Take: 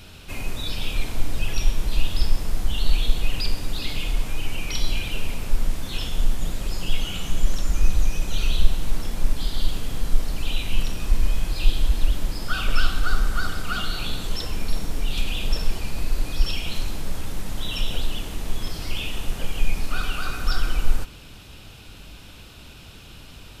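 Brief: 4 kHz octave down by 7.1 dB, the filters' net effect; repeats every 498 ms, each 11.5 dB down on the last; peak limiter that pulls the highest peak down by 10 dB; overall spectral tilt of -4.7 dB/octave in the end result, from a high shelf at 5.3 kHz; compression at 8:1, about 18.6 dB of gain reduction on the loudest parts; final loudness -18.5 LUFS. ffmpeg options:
-af "equalizer=f=4000:t=o:g=-7.5,highshelf=f=5300:g=-5.5,acompressor=threshold=0.0501:ratio=8,alimiter=level_in=1.78:limit=0.0631:level=0:latency=1,volume=0.562,aecho=1:1:498|996|1494:0.266|0.0718|0.0194,volume=18.8"

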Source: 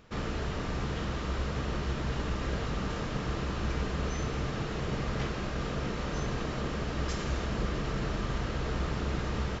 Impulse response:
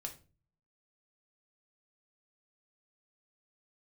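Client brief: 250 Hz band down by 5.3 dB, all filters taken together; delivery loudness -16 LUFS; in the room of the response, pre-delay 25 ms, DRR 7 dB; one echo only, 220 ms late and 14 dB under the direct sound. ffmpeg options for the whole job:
-filter_complex "[0:a]equalizer=f=250:t=o:g=-8,aecho=1:1:220:0.2,asplit=2[s0][s1];[1:a]atrim=start_sample=2205,adelay=25[s2];[s1][s2]afir=irnorm=-1:irlink=0,volume=0.596[s3];[s0][s3]amix=inputs=2:normalize=0,volume=7.5"

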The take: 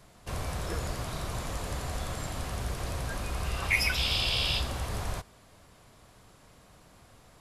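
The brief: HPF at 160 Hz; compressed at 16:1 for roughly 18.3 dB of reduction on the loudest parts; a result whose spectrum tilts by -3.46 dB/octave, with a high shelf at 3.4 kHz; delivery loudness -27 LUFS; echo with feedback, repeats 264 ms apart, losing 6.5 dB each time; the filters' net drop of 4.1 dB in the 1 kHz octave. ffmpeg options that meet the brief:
-af "highpass=160,equalizer=f=1000:t=o:g=-5,highshelf=f=3400:g=-4,acompressor=threshold=0.00794:ratio=16,aecho=1:1:264|528|792|1056|1320|1584:0.473|0.222|0.105|0.0491|0.0231|0.0109,volume=7.5"

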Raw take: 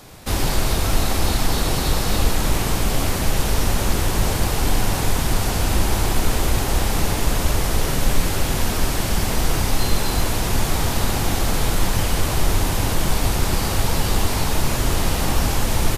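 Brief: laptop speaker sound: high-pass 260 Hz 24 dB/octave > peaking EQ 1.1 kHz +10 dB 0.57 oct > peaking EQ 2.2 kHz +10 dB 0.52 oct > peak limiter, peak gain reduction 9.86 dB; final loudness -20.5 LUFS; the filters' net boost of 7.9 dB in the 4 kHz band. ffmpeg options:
-af "highpass=f=260:w=0.5412,highpass=f=260:w=1.3066,equalizer=f=1100:t=o:w=0.57:g=10,equalizer=f=2200:t=o:w=0.52:g=10,equalizer=f=4000:t=o:g=8,volume=1.41,alimiter=limit=0.224:level=0:latency=1"

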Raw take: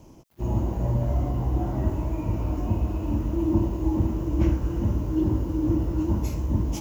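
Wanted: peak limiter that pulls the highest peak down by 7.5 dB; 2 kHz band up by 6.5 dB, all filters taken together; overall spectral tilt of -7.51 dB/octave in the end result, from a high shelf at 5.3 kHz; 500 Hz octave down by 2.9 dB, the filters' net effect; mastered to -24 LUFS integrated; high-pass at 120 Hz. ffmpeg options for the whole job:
-af "highpass=120,equalizer=f=500:t=o:g=-5.5,equalizer=f=2000:t=o:g=7.5,highshelf=f=5300:g=7,volume=2.37,alimiter=limit=0.211:level=0:latency=1"

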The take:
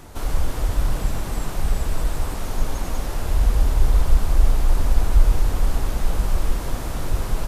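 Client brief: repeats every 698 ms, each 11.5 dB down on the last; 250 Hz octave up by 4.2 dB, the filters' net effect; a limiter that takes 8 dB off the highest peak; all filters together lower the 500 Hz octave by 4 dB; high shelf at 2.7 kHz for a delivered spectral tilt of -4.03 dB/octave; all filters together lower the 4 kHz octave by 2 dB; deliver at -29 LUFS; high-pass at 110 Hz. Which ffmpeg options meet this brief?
-af "highpass=110,equalizer=f=250:t=o:g=8,equalizer=f=500:t=o:g=-8,highshelf=f=2700:g=6,equalizer=f=4000:t=o:g=-8,alimiter=limit=0.0668:level=0:latency=1,aecho=1:1:698|1396|2094:0.266|0.0718|0.0194,volume=1.58"

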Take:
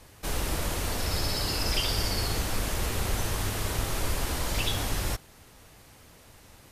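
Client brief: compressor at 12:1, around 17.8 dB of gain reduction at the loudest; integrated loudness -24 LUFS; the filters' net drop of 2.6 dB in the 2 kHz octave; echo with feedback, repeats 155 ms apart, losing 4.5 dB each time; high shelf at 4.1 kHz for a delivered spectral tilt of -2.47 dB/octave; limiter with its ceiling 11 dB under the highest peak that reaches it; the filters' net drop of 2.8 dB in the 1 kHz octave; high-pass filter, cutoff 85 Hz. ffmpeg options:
-af "highpass=85,equalizer=f=1000:t=o:g=-3,equalizer=f=2000:t=o:g=-4,highshelf=f=4100:g=5.5,acompressor=threshold=0.00708:ratio=12,alimiter=level_in=7.94:limit=0.0631:level=0:latency=1,volume=0.126,aecho=1:1:155|310|465|620|775|930|1085|1240|1395:0.596|0.357|0.214|0.129|0.0772|0.0463|0.0278|0.0167|0.01,volume=15.8"

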